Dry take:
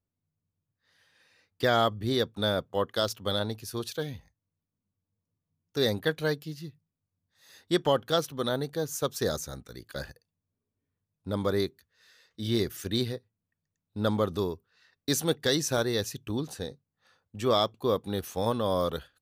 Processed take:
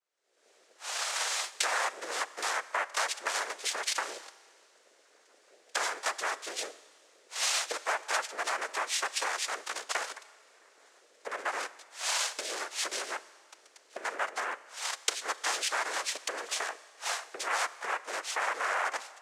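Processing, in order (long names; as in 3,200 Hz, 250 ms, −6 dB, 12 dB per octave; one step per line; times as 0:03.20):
camcorder AGC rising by 62 dB per second
cochlear-implant simulation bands 3
downward compressor 6 to 1, threshold −28 dBFS, peak gain reduction 14 dB
high-pass filter 590 Hz 24 dB per octave
four-comb reverb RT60 1.9 s, combs from 29 ms, DRR 16.5 dB
level +2.5 dB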